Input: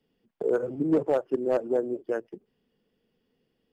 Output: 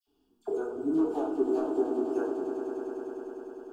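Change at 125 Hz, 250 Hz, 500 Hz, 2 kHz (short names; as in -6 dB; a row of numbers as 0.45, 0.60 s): under -10 dB, +1.0 dB, -3.0 dB, -6.0 dB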